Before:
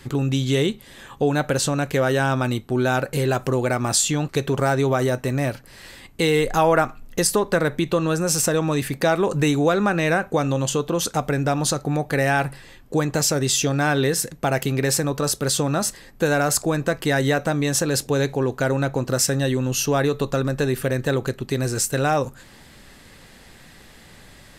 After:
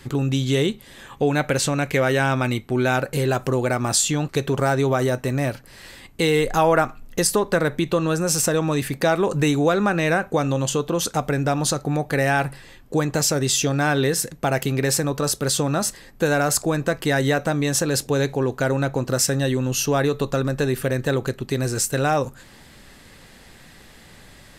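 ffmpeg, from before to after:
-filter_complex "[0:a]asettb=1/sr,asplit=3[s0][s1][s2];[s0]atrim=end=1.124[s3];[s1]atrim=start=1.12:end=2.97,asetpts=PTS-STARTPTS,afade=t=in:d=0.004:c=qsin,afade=t=out:st=1.846:d=0.004:c=qsin,equalizer=f=2200:w=3.3:g=8[s4];[s2]atrim=start=2.966[s5];[s3][s4]acrossfade=d=0.004:c1=hsin:c2=qsin[s6];[s6][s5]acrossfade=d=0.004:c1=qsin:c2=hsin"

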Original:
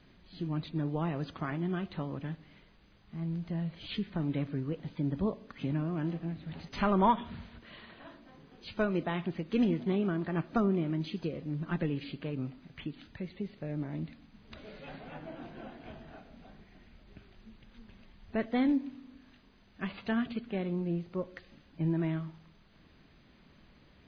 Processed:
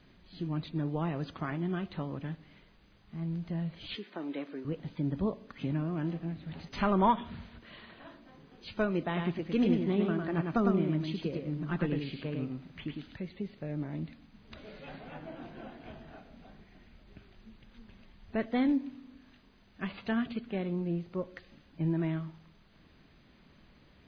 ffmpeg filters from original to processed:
-filter_complex "[0:a]asettb=1/sr,asplit=3[s0][s1][s2];[s0]atrim=end=3.954[s3];[s1]atrim=start=3.95:end=4.65,asetpts=PTS-STARTPTS,afade=t=in:d=0.004:c=qsin,afade=t=out:st=0.696:d=0.004:c=qsin,highpass=f=290:w=0.5412,highpass=f=290:w=1.3066[s4];[s2]atrim=start=4.646[s5];[s3][s4]acrossfade=d=0.004:c1=hsin:c2=qsin[s6];[s6][s5]acrossfade=d=0.004:c1=qsin:c2=hsin,asettb=1/sr,asplit=3[s7][s8][s9];[s7]atrim=end=9.054[s10];[s8]atrim=start=9.05:end=13.17,asetpts=PTS-STARTPTS,afade=t=in:d=0.004:c=qsin,afade=t=out:st=4.116:d=0.004:c=qsin,aecho=1:1:104:0.631,atrim=end_sample=181692[s11];[s9]atrim=start=13.166[s12];[s10][s11]acrossfade=d=0.004:c1=hsin:c2=qsin[s13];[s13][s12]acrossfade=d=0.004:c1=qsin:c2=hsin"

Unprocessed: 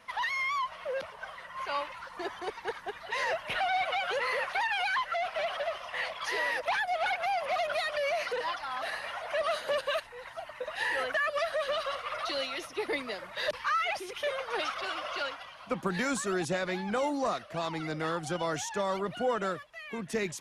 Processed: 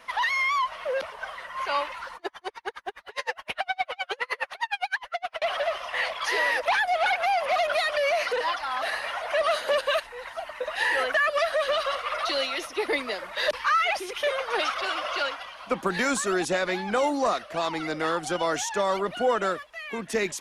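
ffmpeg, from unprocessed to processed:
-filter_complex "[0:a]asettb=1/sr,asplit=3[s0][s1][s2];[s0]atrim=end=2.164[s3];[s1]atrim=start=2.16:end=5.42,asetpts=PTS-STARTPTS,afade=t=in:d=0.004:c=qsin,afade=t=out:st=3.256:d=0.004:c=qsin,aeval=exprs='val(0)*pow(10,-39*(0.5-0.5*cos(2*PI*9.7*n/s))/20)':c=same[s4];[s2]atrim=start=5.416[s5];[s3][s4]acrossfade=d=0.004:c1=hsin:c2=qsin[s6];[s6][s5]acrossfade=d=0.004:c1=qsin:c2=hsin,equalizer=f=130:w=1.5:g=-13.5,volume=2.11"

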